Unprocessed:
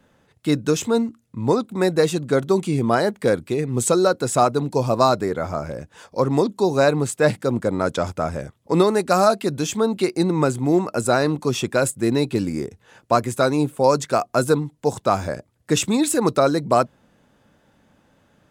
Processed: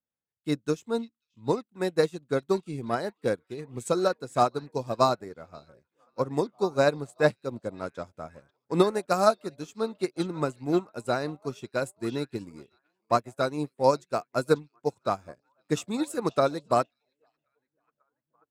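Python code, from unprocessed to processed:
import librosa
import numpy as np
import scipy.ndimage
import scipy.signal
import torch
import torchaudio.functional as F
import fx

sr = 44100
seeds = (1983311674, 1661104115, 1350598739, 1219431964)

y = fx.echo_stepped(x, sr, ms=540, hz=3400.0, octaves=-0.7, feedback_pct=70, wet_db=-7)
y = fx.upward_expand(y, sr, threshold_db=-37.0, expansion=2.5)
y = F.gain(torch.from_numpy(y), -2.5).numpy()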